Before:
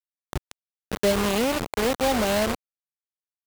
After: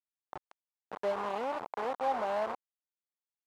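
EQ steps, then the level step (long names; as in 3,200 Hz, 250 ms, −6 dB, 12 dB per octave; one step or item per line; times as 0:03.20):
resonant band-pass 880 Hz, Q 2.1
−3.0 dB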